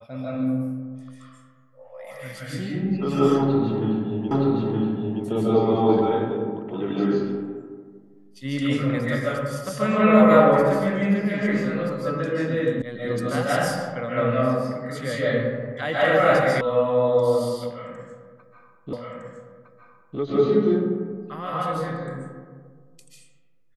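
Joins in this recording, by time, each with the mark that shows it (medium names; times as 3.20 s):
4.31 s: repeat of the last 0.92 s
12.82 s: sound stops dead
16.61 s: sound stops dead
18.93 s: repeat of the last 1.26 s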